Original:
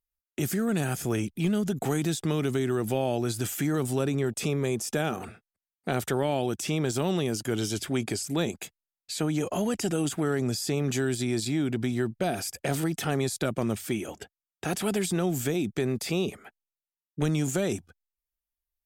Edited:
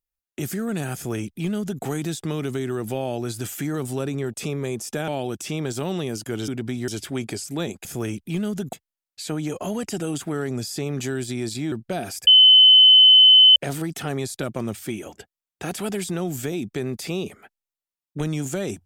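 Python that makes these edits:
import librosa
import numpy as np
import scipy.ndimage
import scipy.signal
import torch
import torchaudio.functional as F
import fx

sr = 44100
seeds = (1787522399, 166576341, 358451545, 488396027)

y = fx.edit(x, sr, fx.duplicate(start_s=0.95, length_s=0.88, to_s=8.64),
    fx.cut(start_s=5.08, length_s=1.19),
    fx.move(start_s=11.63, length_s=0.4, to_s=7.67),
    fx.insert_tone(at_s=12.58, length_s=1.29, hz=3040.0, db=-8.0), tone=tone)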